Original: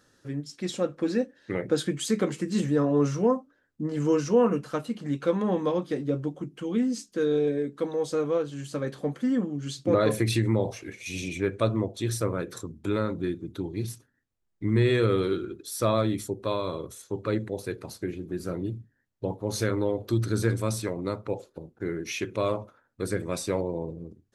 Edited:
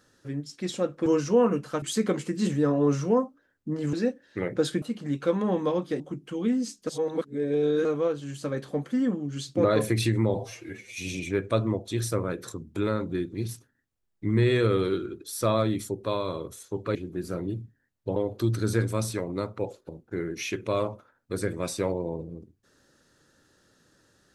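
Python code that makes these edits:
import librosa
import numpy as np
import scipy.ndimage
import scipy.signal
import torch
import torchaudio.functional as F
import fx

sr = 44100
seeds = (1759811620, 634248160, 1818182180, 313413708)

y = fx.edit(x, sr, fx.swap(start_s=1.06, length_s=0.89, other_s=4.06, other_length_s=0.76),
    fx.cut(start_s=6.0, length_s=0.3),
    fx.reverse_span(start_s=7.17, length_s=0.98),
    fx.stretch_span(start_s=10.64, length_s=0.42, factor=1.5),
    fx.cut(start_s=13.43, length_s=0.3),
    fx.cut(start_s=17.34, length_s=0.77),
    fx.cut(start_s=19.32, length_s=0.53), tone=tone)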